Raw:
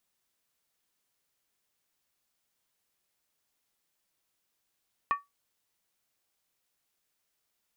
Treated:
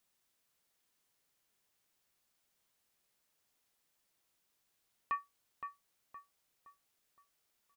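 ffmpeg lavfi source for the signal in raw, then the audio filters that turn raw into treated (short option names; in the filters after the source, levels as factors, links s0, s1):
-f lavfi -i "aevalsrc='0.1*pow(10,-3*t/0.18)*sin(2*PI*1140*t)+0.0355*pow(10,-3*t/0.143)*sin(2*PI*1817.2*t)+0.0126*pow(10,-3*t/0.123)*sin(2*PI*2435*t)+0.00447*pow(10,-3*t/0.119)*sin(2*PI*2617.4*t)+0.00158*pow(10,-3*t/0.111)*sin(2*PI*3024.4*t)':d=0.63:s=44100"
-filter_complex "[0:a]alimiter=level_in=1.33:limit=0.0631:level=0:latency=1:release=15,volume=0.75,asplit=2[s0][s1];[s1]adelay=517,lowpass=f=2000:p=1,volume=0.447,asplit=2[s2][s3];[s3]adelay=517,lowpass=f=2000:p=1,volume=0.44,asplit=2[s4][s5];[s5]adelay=517,lowpass=f=2000:p=1,volume=0.44,asplit=2[s6][s7];[s7]adelay=517,lowpass=f=2000:p=1,volume=0.44,asplit=2[s8][s9];[s9]adelay=517,lowpass=f=2000:p=1,volume=0.44[s10];[s2][s4][s6][s8][s10]amix=inputs=5:normalize=0[s11];[s0][s11]amix=inputs=2:normalize=0"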